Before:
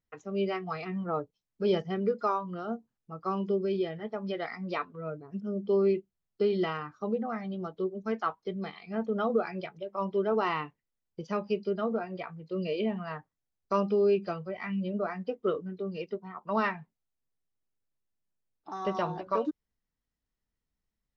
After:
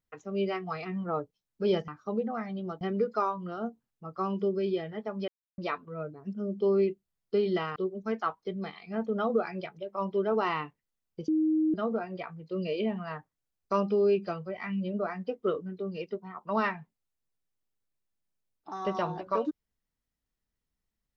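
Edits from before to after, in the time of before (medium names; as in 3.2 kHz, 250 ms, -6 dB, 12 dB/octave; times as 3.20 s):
4.35–4.65 s: mute
6.83–7.76 s: move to 1.88 s
11.28–11.74 s: bleep 313 Hz -22.5 dBFS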